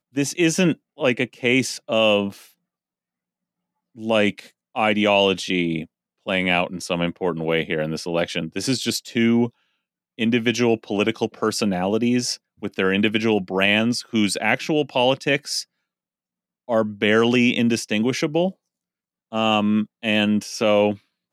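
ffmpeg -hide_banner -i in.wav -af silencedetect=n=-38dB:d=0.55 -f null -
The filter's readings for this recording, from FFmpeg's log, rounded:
silence_start: 2.43
silence_end: 3.98 | silence_duration: 1.55
silence_start: 9.49
silence_end: 10.18 | silence_duration: 0.69
silence_start: 15.63
silence_end: 16.68 | silence_duration: 1.05
silence_start: 18.51
silence_end: 19.32 | silence_duration: 0.81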